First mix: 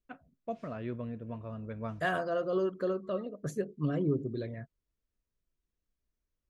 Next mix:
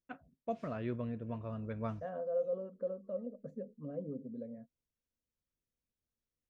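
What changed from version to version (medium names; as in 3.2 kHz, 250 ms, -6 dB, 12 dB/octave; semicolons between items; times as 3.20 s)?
second voice: add two resonant band-passes 350 Hz, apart 1.1 oct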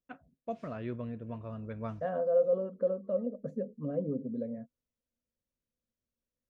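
second voice +8.0 dB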